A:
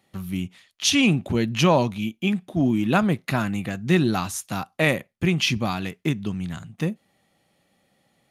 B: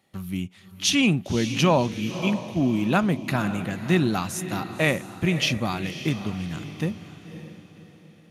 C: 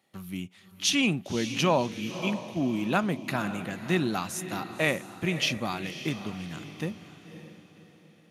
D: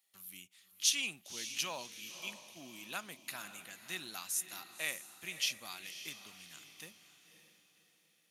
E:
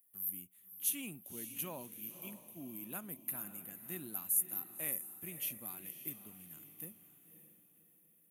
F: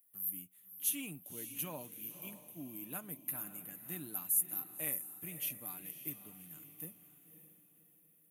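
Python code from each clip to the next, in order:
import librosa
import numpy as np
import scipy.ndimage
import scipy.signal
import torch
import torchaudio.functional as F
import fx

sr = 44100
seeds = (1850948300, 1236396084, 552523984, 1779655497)

y1 = fx.echo_diffused(x, sr, ms=559, feedback_pct=41, wet_db=-11.5)
y1 = y1 * 10.0 ** (-1.5 / 20.0)
y2 = fx.highpass(y1, sr, hz=210.0, slope=6)
y2 = y2 * 10.0 ** (-3.0 / 20.0)
y3 = librosa.effects.preemphasis(y2, coef=0.97, zi=[0.0])
y4 = fx.curve_eq(y3, sr, hz=(280.0, 660.0, 2900.0, 5200.0, 13000.0), db=(0, -10, -20, -30, 8))
y4 = y4 * 10.0 ** (6.5 / 20.0)
y5 = y4 + 0.4 * np.pad(y4, (int(6.7 * sr / 1000.0), 0))[:len(y4)]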